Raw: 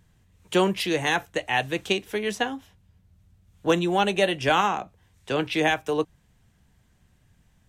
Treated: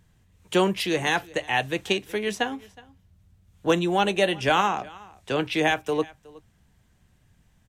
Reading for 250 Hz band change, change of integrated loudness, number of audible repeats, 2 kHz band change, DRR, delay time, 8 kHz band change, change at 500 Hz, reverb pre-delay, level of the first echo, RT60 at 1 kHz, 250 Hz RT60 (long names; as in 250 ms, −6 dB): 0.0 dB, 0.0 dB, 1, 0.0 dB, no reverb audible, 367 ms, 0.0 dB, 0.0 dB, no reverb audible, −22.5 dB, no reverb audible, no reverb audible